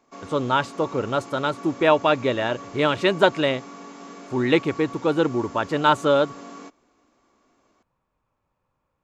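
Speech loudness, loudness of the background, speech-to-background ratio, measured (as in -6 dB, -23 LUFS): -22.5 LUFS, -40.0 LUFS, 17.5 dB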